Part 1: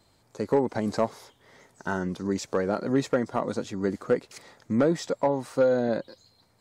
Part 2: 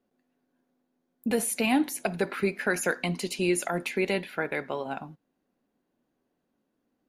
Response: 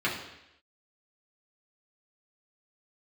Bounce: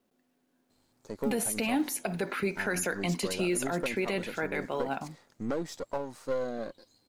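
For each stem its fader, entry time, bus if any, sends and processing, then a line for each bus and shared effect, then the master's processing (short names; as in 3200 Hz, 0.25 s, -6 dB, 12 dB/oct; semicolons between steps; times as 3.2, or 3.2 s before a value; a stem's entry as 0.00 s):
-7.0 dB, 0.70 s, no send, half-wave gain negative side -7 dB; tone controls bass -1 dB, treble +4 dB
+1.0 dB, 0.00 s, no send, companded quantiser 8-bit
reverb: off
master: limiter -20.5 dBFS, peak gain reduction 8 dB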